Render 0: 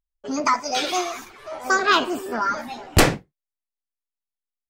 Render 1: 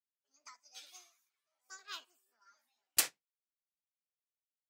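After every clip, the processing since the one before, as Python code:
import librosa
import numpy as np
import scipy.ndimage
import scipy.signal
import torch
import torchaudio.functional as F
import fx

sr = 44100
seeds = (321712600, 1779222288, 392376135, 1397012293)

y = np.diff(x, prepend=0.0)
y = fx.transient(y, sr, attack_db=-1, sustain_db=5)
y = fx.upward_expand(y, sr, threshold_db=-41.0, expansion=2.5)
y = y * librosa.db_to_amplitude(-4.0)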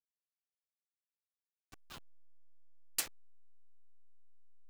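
y = fx.delta_hold(x, sr, step_db=-38.0)
y = y * librosa.db_to_amplitude(-6.0)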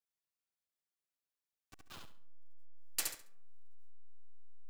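y = fx.echo_feedback(x, sr, ms=69, feedback_pct=26, wet_db=-4)
y = fx.rev_freeverb(y, sr, rt60_s=0.83, hf_ratio=0.4, predelay_ms=30, drr_db=19.0)
y = y * librosa.db_to_amplitude(-1.5)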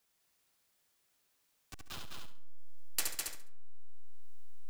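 y = x + 10.0 ** (-4.5 / 20.0) * np.pad(x, (int(204 * sr / 1000.0), 0))[:len(x)]
y = fx.band_squash(y, sr, depth_pct=40)
y = y * librosa.db_to_amplitude(4.5)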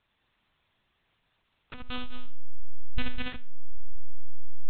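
y = fx.rev_schroeder(x, sr, rt60_s=0.46, comb_ms=30, drr_db=8.5)
y = fx.lpc_monotone(y, sr, seeds[0], pitch_hz=250.0, order=8)
y = y * librosa.db_to_amplitude(8.5)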